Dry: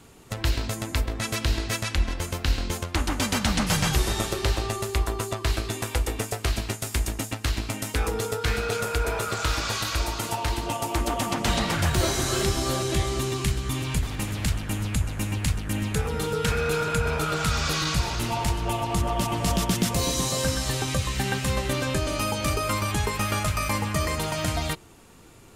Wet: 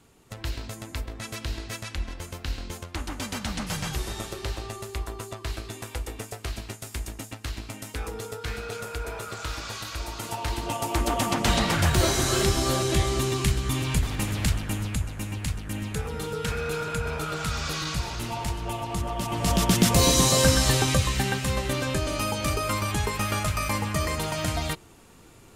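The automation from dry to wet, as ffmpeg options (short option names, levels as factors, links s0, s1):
-af "volume=3.98,afade=t=in:st=9.99:d=1.21:silence=0.354813,afade=t=out:st=14.43:d=0.7:silence=0.501187,afade=t=in:st=19.22:d=0.82:silence=0.298538,afade=t=out:st=20.65:d=0.73:silence=0.446684"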